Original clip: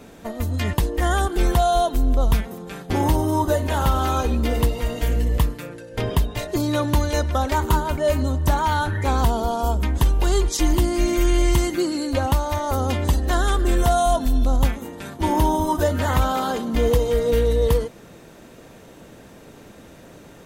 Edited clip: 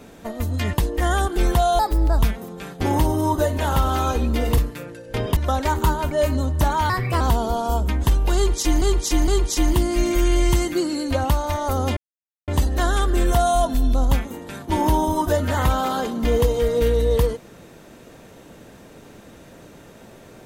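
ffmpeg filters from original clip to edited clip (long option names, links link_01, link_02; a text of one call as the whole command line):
ffmpeg -i in.wav -filter_complex "[0:a]asplit=10[link_01][link_02][link_03][link_04][link_05][link_06][link_07][link_08][link_09][link_10];[link_01]atrim=end=1.794[link_11];[link_02]atrim=start=1.79:end=2.28,asetpts=PTS-STARTPTS,asetrate=54684,aresample=44100[link_12];[link_03]atrim=start=2.276:end=4.672[link_13];[link_04]atrim=start=5.408:end=6.202[link_14];[link_05]atrim=start=7.228:end=8.764[link_15];[link_06]atrim=start=8.76:end=9.15,asetpts=PTS-STARTPTS,asetrate=55125,aresample=44100,atrim=end_sample=13759,asetpts=PTS-STARTPTS[link_16];[link_07]atrim=start=9.146:end=10.762[link_17];[link_08]atrim=start=10.298:end=10.762[link_18];[link_09]atrim=start=10.298:end=12.99,asetpts=PTS-STARTPTS,afade=type=out:start_time=2.688:duration=0.004:curve=hsin,apad=pad_dur=0.51[link_19];[link_10]atrim=start=12.99,asetpts=PTS-STARTPTS,afade=type=in:duration=0.004:curve=hsin[link_20];[link_11][link_12]acrossfade=duration=0.004:curve1=hsin:curve2=hsin[link_21];[link_21][link_13]acrossfade=duration=0.004:curve1=hsin:curve2=hsin[link_22];[link_22][link_14]acrossfade=duration=0.004:curve1=hsin:curve2=hsin[link_23];[link_23][link_15]acrossfade=duration=0.004:curve1=hsin:curve2=hsin[link_24];[link_24][link_16]acrossfade=duration=0.004:curve1=hsin:curve2=hsin[link_25];[link_25][link_17]acrossfade=duration=0.004:curve1=hsin:curve2=hsin[link_26];[link_26][link_18]acrossfade=duration=0.004:curve1=hsin:curve2=hsin[link_27];[link_19][link_20]concat=n=2:v=0:a=1[link_28];[link_27][link_28]acrossfade=duration=0.004:curve1=hsin:curve2=hsin" out.wav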